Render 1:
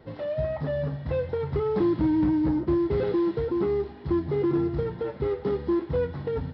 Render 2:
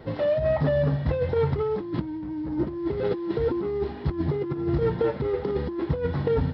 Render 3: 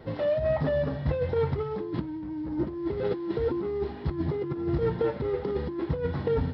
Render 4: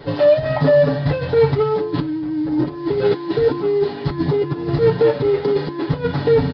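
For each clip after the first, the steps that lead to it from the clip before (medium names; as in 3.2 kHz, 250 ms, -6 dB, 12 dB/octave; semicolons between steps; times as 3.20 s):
compressor with a negative ratio -28 dBFS, ratio -0.5; trim +4 dB
de-hum 143.8 Hz, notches 33; trim -2.5 dB
tone controls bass -4 dB, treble +11 dB; comb 7 ms, depth 98%; resampled via 11.025 kHz; trim +9 dB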